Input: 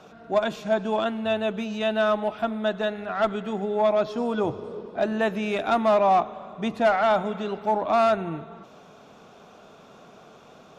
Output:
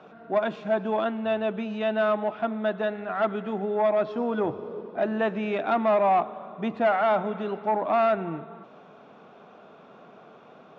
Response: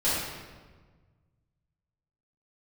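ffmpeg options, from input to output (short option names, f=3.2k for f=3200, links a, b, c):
-af "asoftclip=type=tanh:threshold=-14.5dB,highpass=150,lowpass=2.5k"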